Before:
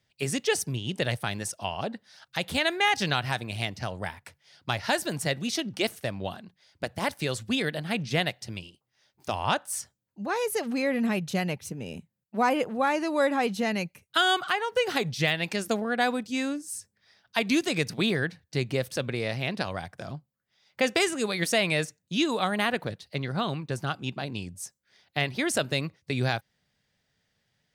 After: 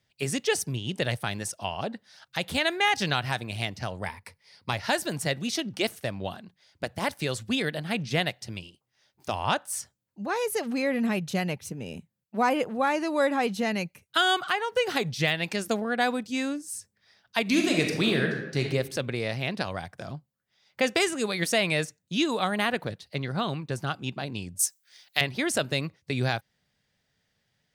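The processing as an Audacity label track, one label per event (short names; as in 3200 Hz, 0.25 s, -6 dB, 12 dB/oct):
4.060000	4.730000	ripple EQ crests per octave 0.9, crest to trough 8 dB
17.420000	18.610000	reverb throw, RT60 0.99 s, DRR 1.5 dB
24.590000	25.210000	tilt +4.5 dB/oct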